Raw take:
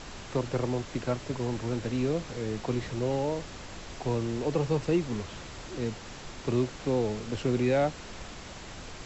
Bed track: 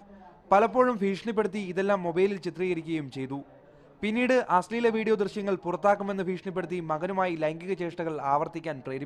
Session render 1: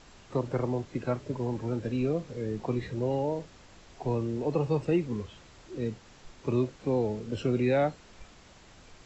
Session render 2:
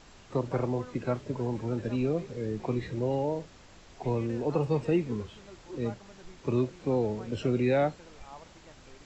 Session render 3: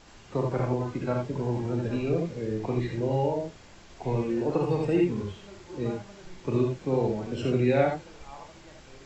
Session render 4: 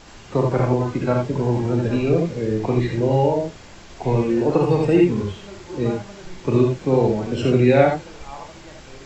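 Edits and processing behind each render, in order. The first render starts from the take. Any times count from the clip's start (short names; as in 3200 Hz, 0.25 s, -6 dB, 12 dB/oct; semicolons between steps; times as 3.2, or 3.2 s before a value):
noise print and reduce 11 dB
add bed track -22.5 dB
non-linear reverb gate 0.1 s rising, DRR 0.5 dB
gain +8.5 dB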